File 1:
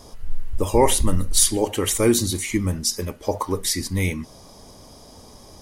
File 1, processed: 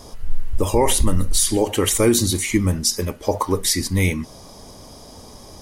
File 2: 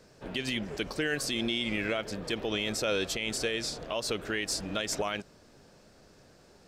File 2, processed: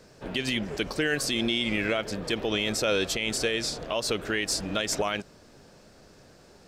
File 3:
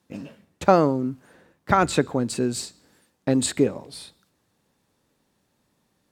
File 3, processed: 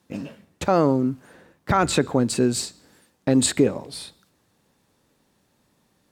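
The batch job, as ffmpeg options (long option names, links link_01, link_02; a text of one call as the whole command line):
ffmpeg -i in.wav -af "alimiter=level_in=10dB:limit=-1dB:release=50:level=0:latency=1,volume=-6dB" out.wav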